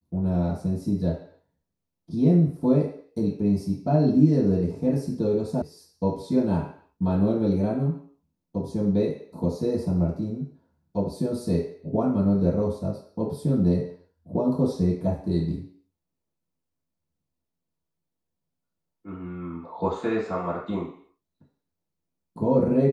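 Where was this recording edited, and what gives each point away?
5.62 s: sound stops dead

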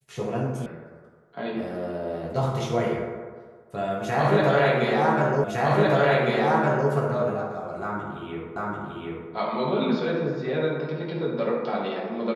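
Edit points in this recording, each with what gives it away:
0.66 s: sound stops dead
5.44 s: repeat of the last 1.46 s
8.56 s: repeat of the last 0.74 s

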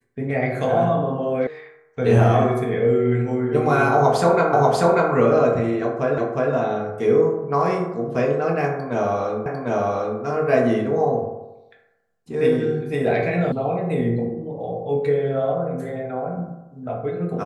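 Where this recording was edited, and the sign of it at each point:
1.47 s: sound stops dead
4.53 s: repeat of the last 0.59 s
6.18 s: repeat of the last 0.36 s
9.46 s: repeat of the last 0.75 s
13.52 s: sound stops dead

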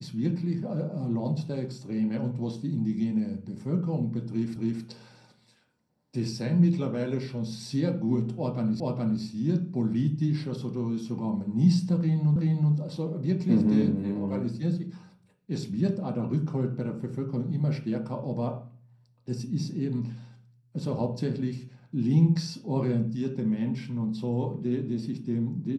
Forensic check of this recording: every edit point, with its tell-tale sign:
4.56 s: repeat of the last 0.27 s
8.80 s: repeat of the last 0.42 s
12.36 s: repeat of the last 0.38 s

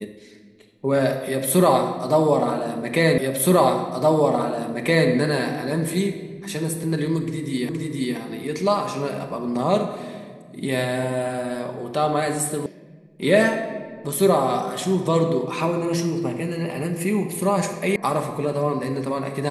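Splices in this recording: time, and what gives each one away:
3.18 s: repeat of the last 1.92 s
7.69 s: repeat of the last 0.47 s
12.66 s: sound stops dead
17.96 s: sound stops dead

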